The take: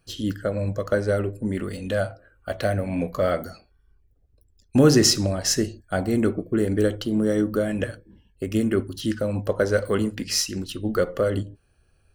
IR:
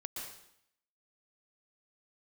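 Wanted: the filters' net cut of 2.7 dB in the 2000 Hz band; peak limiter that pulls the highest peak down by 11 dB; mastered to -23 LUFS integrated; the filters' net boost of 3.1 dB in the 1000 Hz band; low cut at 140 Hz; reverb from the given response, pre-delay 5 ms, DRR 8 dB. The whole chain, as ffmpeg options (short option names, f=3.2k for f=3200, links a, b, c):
-filter_complex "[0:a]highpass=140,equalizer=f=1k:t=o:g=8,equalizer=f=2k:t=o:g=-8.5,alimiter=limit=-15dB:level=0:latency=1,asplit=2[a][b];[1:a]atrim=start_sample=2205,adelay=5[c];[b][c]afir=irnorm=-1:irlink=0,volume=-7dB[d];[a][d]amix=inputs=2:normalize=0,volume=3dB"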